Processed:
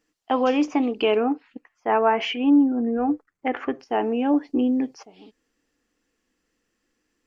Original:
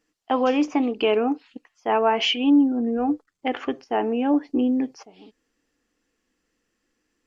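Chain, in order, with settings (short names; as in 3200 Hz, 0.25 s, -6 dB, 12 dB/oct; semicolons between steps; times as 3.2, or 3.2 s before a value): 1.2–3.8 resonant high shelf 2600 Hz -8 dB, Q 1.5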